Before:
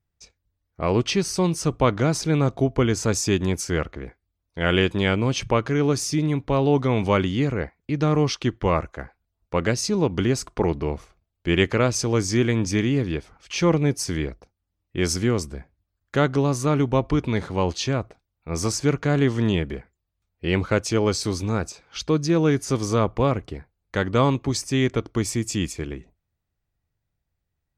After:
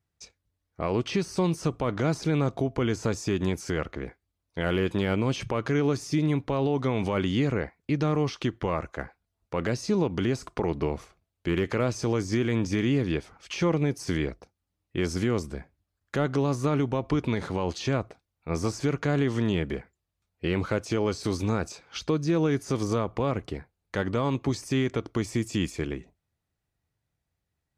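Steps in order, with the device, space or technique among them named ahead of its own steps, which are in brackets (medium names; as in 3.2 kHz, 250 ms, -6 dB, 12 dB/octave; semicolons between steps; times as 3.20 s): podcast mastering chain (high-pass 94 Hz 6 dB/octave; de-esser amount 85%; compression 4:1, threshold -21 dBFS, peak gain reduction 6.5 dB; peak limiter -17 dBFS, peak gain reduction 7 dB; trim +1.5 dB; MP3 96 kbps 32 kHz)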